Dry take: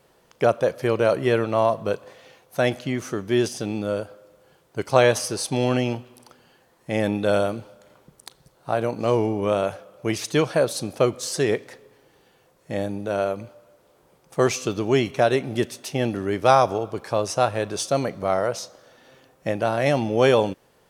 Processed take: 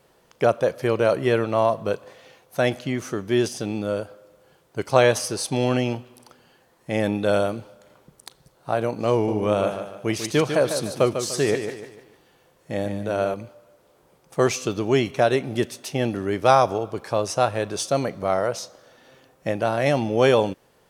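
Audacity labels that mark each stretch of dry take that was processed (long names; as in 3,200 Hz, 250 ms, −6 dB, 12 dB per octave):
9.130000	13.340000	repeating echo 148 ms, feedback 38%, level −8 dB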